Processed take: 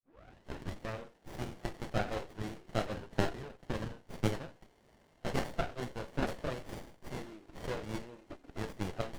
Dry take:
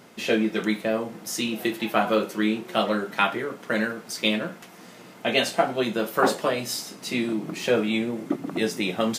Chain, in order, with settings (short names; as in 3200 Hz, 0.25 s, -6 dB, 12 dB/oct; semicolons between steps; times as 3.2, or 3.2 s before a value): tape start at the beginning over 0.79 s; HPF 700 Hz 12 dB/oct; tilt +2 dB/oct; spectral noise reduction 8 dB; air absorption 120 m; running maximum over 33 samples; gain -6 dB